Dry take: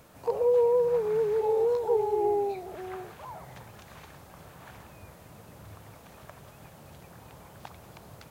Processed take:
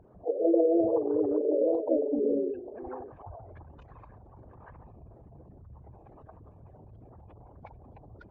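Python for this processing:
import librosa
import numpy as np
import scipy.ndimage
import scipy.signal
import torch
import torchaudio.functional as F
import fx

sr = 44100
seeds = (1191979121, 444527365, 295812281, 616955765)

y = fx.envelope_sharpen(x, sr, power=3.0)
y = fx.pitch_keep_formants(y, sr, semitones=-6.5)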